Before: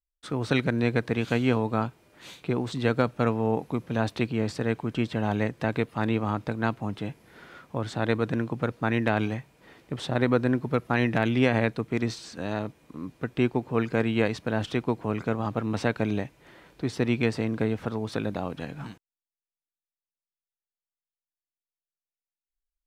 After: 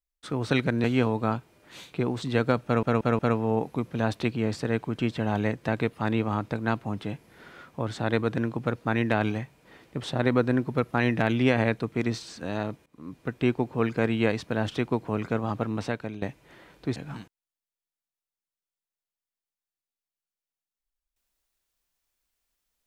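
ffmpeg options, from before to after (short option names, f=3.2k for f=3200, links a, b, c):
-filter_complex "[0:a]asplit=8[a][b][c][d][e][f][g][h];[a]atrim=end=0.842[i];[b]atrim=start=1.338:end=3.332[j];[c]atrim=start=3.148:end=3.332[k];[d]atrim=start=3.148:end=3.332[l];[e]atrim=start=3.148:end=12.82,asetpts=PTS-STARTPTS,afade=t=out:st=9.668:d=0.004:c=hsin:silence=0.0944061[m];[f]atrim=start=12.82:end=16.18,asetpts=PTS-STARTPTS,afade=t=in:d=0.51:c=qsin:silence=0.0944061,afade=t=out:st=2.75:d=0.61:silence=0.199526[n];[g]atrim=start=16.18:end=16.922,asetpts=PTS-STARTPTS,afade=t=in:d=0.004:c=hsin:silence=0.199526[o];[h]atrim=start=18.658[p];[i][j]acrossfade=d=0.004:c1=hsin:c2=hsin[q];[q][k]acrossfade=d=0.004:c1=hsin:c2=hsin[r];[r][l]acrossfade=d=0.004:c1=hsin:c2=hsin[s];[m][n][o]concat=n=3:v=0:a=1[t];[s][t]acrossfade=d=0.004:c1=hsin:c2=hsin[u];[u][p]acrossfade=d=0.004:c1=hsin:c2=hsin"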